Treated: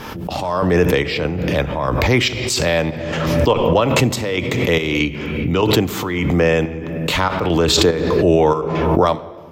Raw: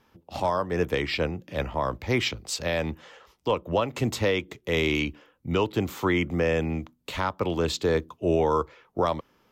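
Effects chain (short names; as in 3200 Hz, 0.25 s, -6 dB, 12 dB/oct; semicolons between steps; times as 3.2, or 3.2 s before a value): chopper 1.6 Hz, depth 65%, duty 65%; shoebox room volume 2600 m³, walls mixed, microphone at 0.44 m; backwards sustainer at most 28 dB/s; gain +9 dB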